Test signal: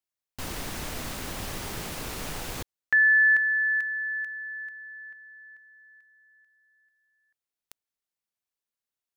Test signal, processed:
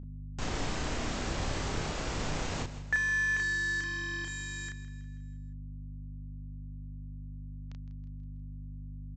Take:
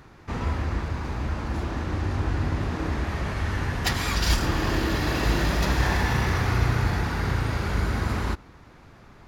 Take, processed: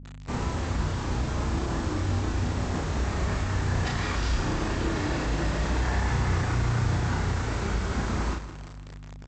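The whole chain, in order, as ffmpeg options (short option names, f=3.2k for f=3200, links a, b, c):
-filter_complex "[0:a]highshelf=f=2.6k:g=-10,alimiter=limit=-22dB:level=0:latency=1:release=30,aresample=16000,acrusher=bits=6:mix=0:aa=0.000001,aresample=44100,aeval=exprs='val(0)+0.00891*(sin(2*PI*50*n/s)+sin(2*PI*2*50*n/s)/2+sin(2*PI*3*50*n/s)/3+sin(2*PI*4*50*n/s)/4+sin(2*PI*5*50*n/s)/5)':c=same,asplit=2[a][b];[b]adelay=33,volume=-2.5dB[c];[a][c]amix=inputs=2:normalize=0,aecho=1:1:162|324|486|648|810:0.2|0.102|0.0519|0.0265|0.0135"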